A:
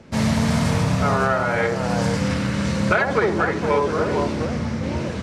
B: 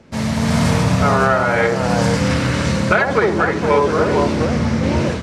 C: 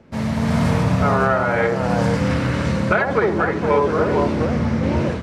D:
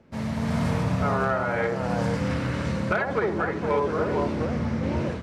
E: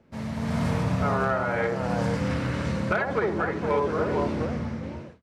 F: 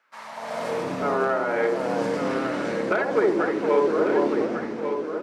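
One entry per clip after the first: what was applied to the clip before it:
notches 50/100/150/200 Hz; AGC gain up to 11.5 dB; gain -1 dB
bell 7100 Hz -8.5 dB 2.3 oct; gain -2 dB
hard clip -7.5 dBFS, distortion -35 dB; gain -7 dB
ending faded out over 0.86 s; AGC gain up to 3 dB; gain -3.5 dB
high-pass sweep 1400 Hz -> 330 Hz, 0.01–0.91; echo 1.146 s -7.5 dB

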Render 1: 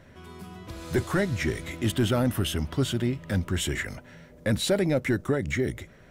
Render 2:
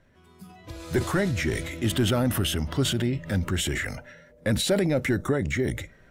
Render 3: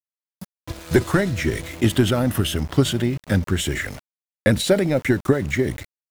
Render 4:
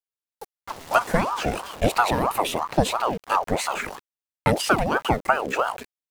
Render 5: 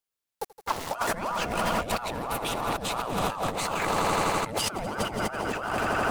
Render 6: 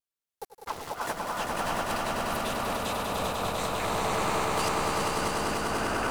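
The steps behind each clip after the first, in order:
spectral noise reduction 11 dB; transient shaper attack +1 dB, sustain +7 dB
transient shaper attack +7 dB, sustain -5 dB; sample gate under -38 dBFS; gain +3 dB
ring modulator with a swept carrier 710 Hz, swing 55%, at 3 Hz
swelling echo 83 ms, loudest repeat 5, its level -14 dB; negative-ratio compressor -30 dBFS, ratio -1
wow and flutter 64 cents; swelling echo 99 ms, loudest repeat 5, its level -5 dB; gain -6.5 dB

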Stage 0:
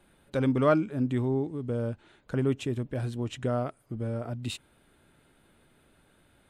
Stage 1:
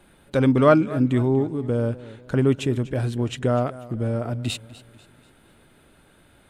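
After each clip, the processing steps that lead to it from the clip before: warbling echo 0.245 s, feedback 42%, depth 83 cents, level -18 dB; gain +7.5 dB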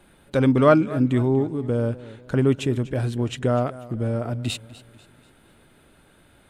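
nothing audible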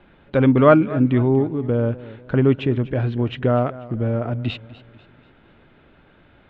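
LPF 3200 Hz 24 dB/oct; gain +3 dB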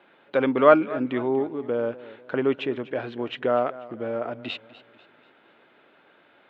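HPF 400 Hz 12 dB/oct; gain -1 dB

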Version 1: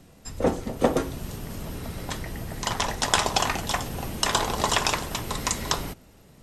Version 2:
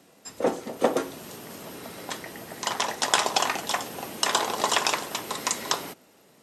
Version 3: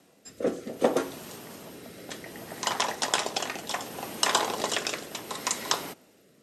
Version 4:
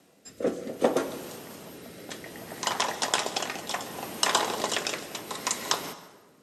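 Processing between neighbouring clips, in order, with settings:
HPF 290 Hz 12 dB/oct
rotary speaker horn 0.65 Hz
plate-style reverb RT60 1.2 s, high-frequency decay 0.6×, pre-delay 0.115 s, DRR 14 dB

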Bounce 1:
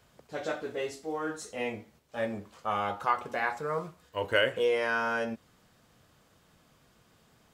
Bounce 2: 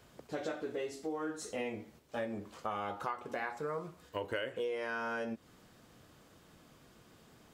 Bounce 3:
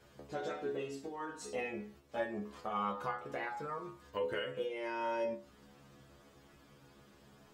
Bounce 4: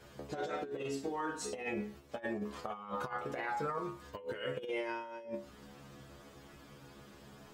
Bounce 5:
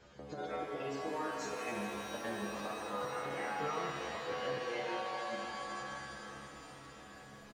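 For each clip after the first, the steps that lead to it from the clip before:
bell 320 Hz +5.5 dB 0.95 oct; compressor 5:1, threshold -37 dBFS, peak gain reduction 16 dB; gain +1.5 dB
high shelf 4900 Hz -6 dB; metallic resonator 68 Hz, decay 0.4 s, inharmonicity 0.002; gain +9.5 dB
negative-ratio compressor -41 dBFS, ratio -0.5; gain +3 dB
spectral gate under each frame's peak -30 dB strong; downsampling 16000 Hz; shimmer reverb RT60 3.9 s, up +7 st, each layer -2 dB, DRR 1.5 dB; gain -4 dB

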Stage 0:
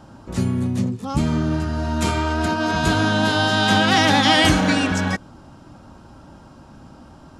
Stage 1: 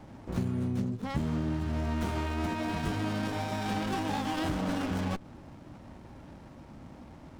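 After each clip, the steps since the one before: compressor, threshold -23 dBFS, peak gain reduction 11.5 dB; running maximum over 17 samples; gain -4 dB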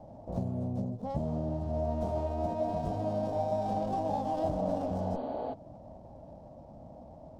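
spectral repair 5.01–5.51, 230–4700 Hz before; EQ curve 190 Hz 0 dB, 380 Hz -4 dB, 640 Hz +13 dB, 1400 Hz -16 dB, 2200 Hz -19 dB, 5100 Hz -9 dB, 13000 Hz -14 dB; gain -2.5 dB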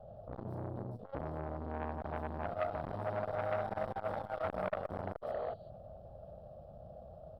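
fixed phaser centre 1400 Hz, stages 8; bands offset in time lows, highs 0.16 s, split 4700 Hz; core saturation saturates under 1000 Hz; gain +1 dB

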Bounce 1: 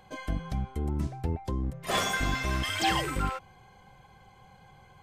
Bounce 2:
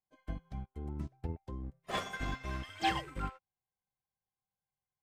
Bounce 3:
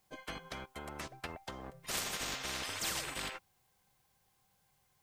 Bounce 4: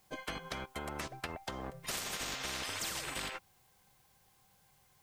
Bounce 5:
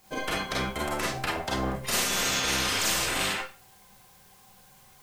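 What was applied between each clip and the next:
high shelf 5300 Hz -9.5 dB; upward expander 2.5:1, over -51 dBFS; gain -2.5 dB
spectral compressor 10:1; gain -4.5 dB
compressor 6:1, threshold -42 dBFS, peak gain reduction 9.5 dB; gain +6 dB
Schroeder reverb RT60 0.32 s, combs from 31 ms, DRR -4 dB; gain +7 dB

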